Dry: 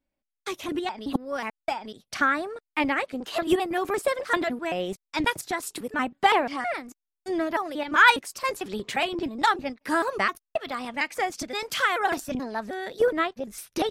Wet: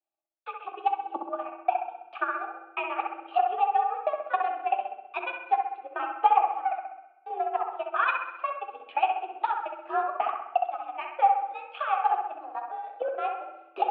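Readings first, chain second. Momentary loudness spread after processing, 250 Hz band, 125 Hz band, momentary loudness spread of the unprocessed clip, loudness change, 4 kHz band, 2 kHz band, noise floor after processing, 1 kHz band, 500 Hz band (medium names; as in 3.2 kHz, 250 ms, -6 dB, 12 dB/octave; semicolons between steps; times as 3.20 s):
12 LU, -18.0 dB, under -40 dB, 10 LU, -2.5 dB, -15.0 dB, -10.0 dB, -55 dBFS, +2.0 dB, -6.0 dB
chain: in parallel at -1 dB: level held to a coarse grid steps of 14 dB; on the sum: vowel filter a; flange 0.47 Hz, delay 9.5 ms, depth 9 ms, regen -51%; transient shaper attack +8 dB, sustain -9 dB; on a send: bucket-brigade echo 65 ms, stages 1024, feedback 56%, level -4 dB; on the sum: FDN reverb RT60 1.1 s, low-frequency decay 1.3×, high-frequency decay 0.95×, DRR 11 dB; mistuned SSB +57 Hz 180–3300 Hz; trim +1.5 dB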